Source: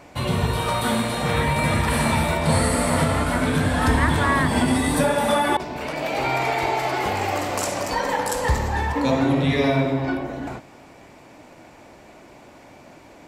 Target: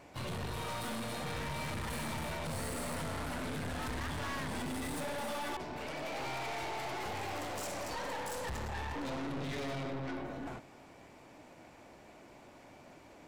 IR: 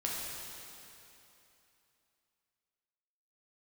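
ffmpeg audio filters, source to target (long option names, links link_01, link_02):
-filter_complex "[0:a]asplit=2[link_01][link_02];[link_02]asetrate=58866,aresample=44100,atempo=0.749154,volume=-15dB[link_03];[link_01][link_03]amix=inputs=2:normalize=0,aeval=exprs='(tanh(28.2*val(0)+0.4)-tanh(0.4))/28.2':channel_layout=same,volume=-8dB"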